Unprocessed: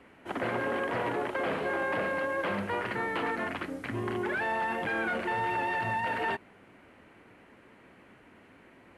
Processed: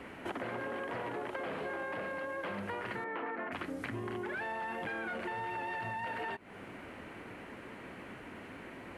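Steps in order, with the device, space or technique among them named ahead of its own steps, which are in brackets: 3.04–3.52 s: three-band isolator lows -17 dB, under 210 Hz, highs -24 dB, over 2.6 kHz; serial compression, peaks first (compression, threshold -40 dBFS, peak gain reduction 12 dB; compression 2:1, threshold -48 dBFS, peak gain reduction 6 dB); trim +8.5 dB

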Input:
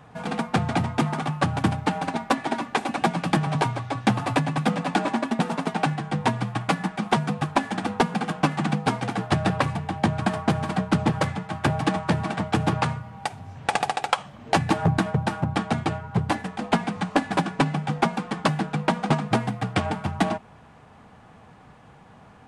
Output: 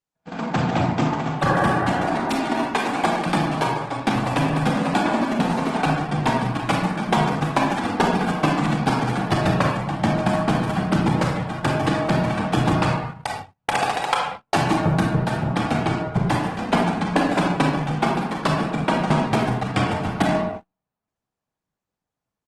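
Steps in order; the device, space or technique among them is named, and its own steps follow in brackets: 1.48–2.44 s: spectral replace 280–2000 Hz both; 2.90–4.16 s: Bessel high-pass 170 Hz, order 4; speakerphone in a meeting room (reverberation RT60 0.85 s, pre-delay 28 ms, DRR -1 dB; speakerphone echo 110 ms, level -22 dB; level rider gain up to 7 dB; gate -25 dBFS, range -42 dB; trim -5 dB; Opus 16 kbps 48 kHz)

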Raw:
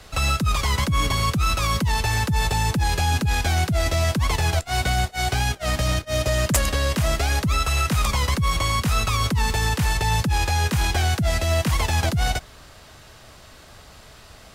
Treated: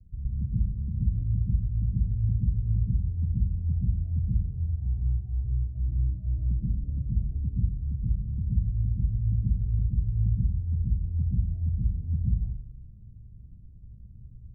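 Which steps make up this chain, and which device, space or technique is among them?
club heard from the street (peak limiter -21.5 dBFS, peak gain reduction 10 dB; low-pass 180 Hz 24 dB/octave; reverberation RT60 0.70 s, pre-delay 111 ms, DRR -7 dB); trim -4 dB

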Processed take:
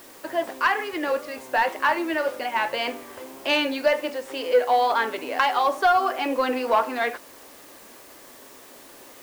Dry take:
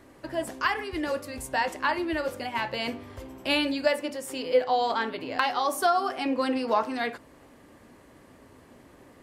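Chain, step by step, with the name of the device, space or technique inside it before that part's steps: tape answering machine (band-pass 390–3300 Hz; saturation -16.5 dBFS, distortion -18 dB; wow and flutter; white noise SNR 24 dB); trim +6.5 dB

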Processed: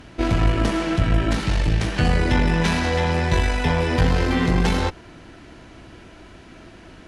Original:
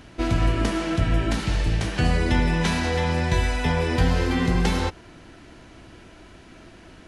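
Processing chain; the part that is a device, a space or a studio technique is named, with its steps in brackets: tube preamp driven hard (valve stage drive 14 dB, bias 0.55; treble shelf 6.5 kHz -4.5 dB); trim +5.5 dB

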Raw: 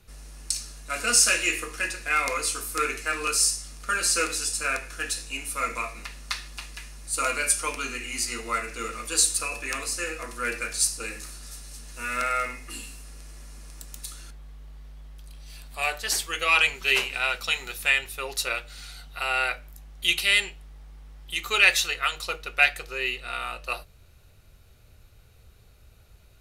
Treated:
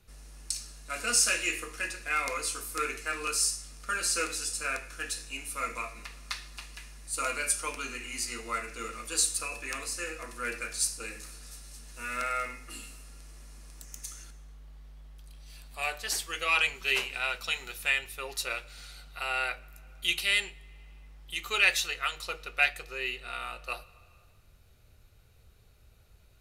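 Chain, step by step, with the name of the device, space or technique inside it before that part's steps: 13.82–14.24 s: graphic EQ with 31 bands 2 kHz +5 dB, 4 kHz -7 dB, 6.3 kHz +11 dB; compressed reverb return (on a send at -14 dB: reverberation RT60 1.3 s, pre-delay 106 ms + compression, threshold -36 dBFS, peak gain reduction 18 dB); on the sum: trim -5.5 dB

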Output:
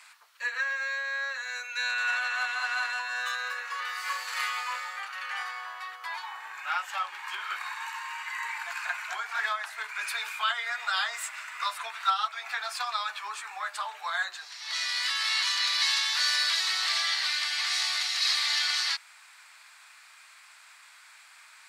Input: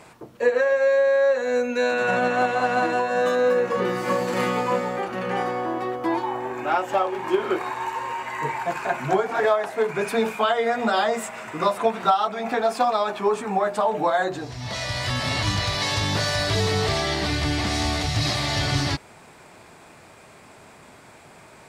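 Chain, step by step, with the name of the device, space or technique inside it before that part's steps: elliptic high-pass 370 Hz; headphones lying on a table (high-pass 1.3 kHz 24 dB/octave; peaking EQ 4.3 kHz +4.5 dB 0.34 oct)

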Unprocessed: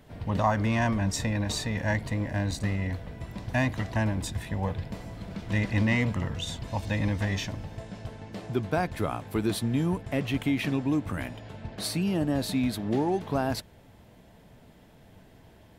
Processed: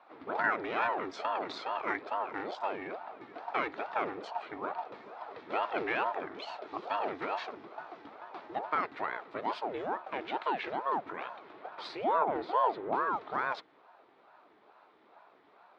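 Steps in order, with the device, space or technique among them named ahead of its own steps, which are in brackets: 12.04–12.95 s: tone controls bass +8 dB, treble -14 dB; voice changer toy (ring modulator with a swept carrier 500 Hz, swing 65%, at 2.3 Hz; cabinet simulation 440–3700 Hz, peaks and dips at 530 Hz -6 dB, 1.3 kHz +4 dB, 2.9 kHz -6 dB); trim -1 dB

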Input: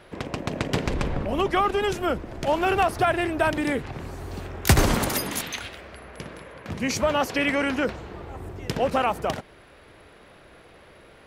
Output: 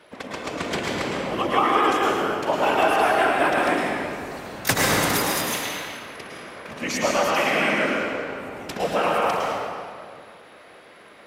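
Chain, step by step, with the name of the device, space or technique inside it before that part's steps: whispering ghost (whisper effect; high-pass 450 Hz 6 dB/octave; reverberation RT60 2.2 s, pre-delay 101 ms, DRR -3.5 dB)

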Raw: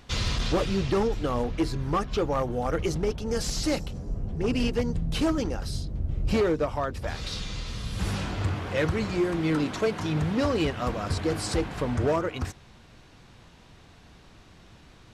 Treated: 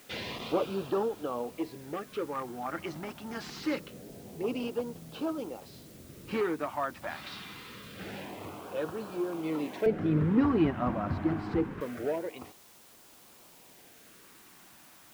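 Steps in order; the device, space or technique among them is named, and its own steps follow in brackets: shortwave radio (band-pass 300–2500 Hz; tremolo 0.28 Hz, depth 47%; LFO notch sine 0.25 Hz 440–2100 Hz; white noise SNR 21 dB); 9.86–11.81 s: tilt EQ -4.5 dB/octave

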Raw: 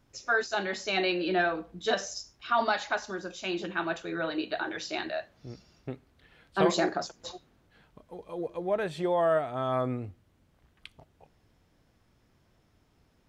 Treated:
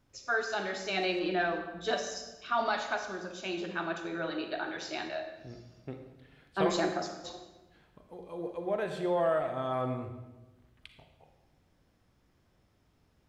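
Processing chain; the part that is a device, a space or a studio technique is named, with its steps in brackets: saturated reverb return (on a send at -5 dB: reverberation RT60 1.1 s, pre-delay 37 ms + saturation -19 dBFS, distortion -17 dB); on the sum: trim -4 dB

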